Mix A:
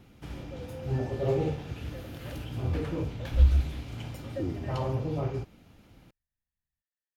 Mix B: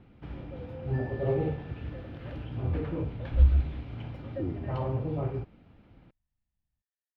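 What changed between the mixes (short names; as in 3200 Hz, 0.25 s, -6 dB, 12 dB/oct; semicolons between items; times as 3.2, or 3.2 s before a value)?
second sound +8.5 dB; master: add air absorption 370 m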